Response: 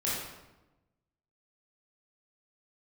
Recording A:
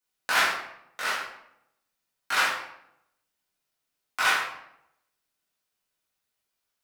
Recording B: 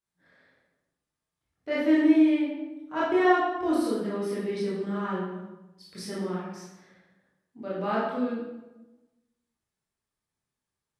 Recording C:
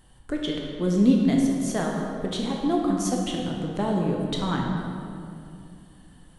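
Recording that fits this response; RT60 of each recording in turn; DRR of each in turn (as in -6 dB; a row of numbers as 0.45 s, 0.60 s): B; 0.80 s, 1.0 s, 2.6 s; -7.5 dB, -8.0 dB, -1.0 dB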